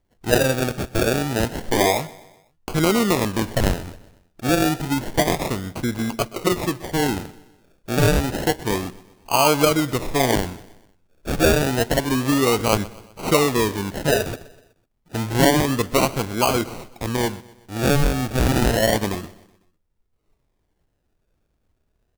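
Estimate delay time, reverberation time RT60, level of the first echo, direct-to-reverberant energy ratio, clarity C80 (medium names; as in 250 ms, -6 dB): 125 ms, no reverb, -20.0 dB, no reverb, no reverb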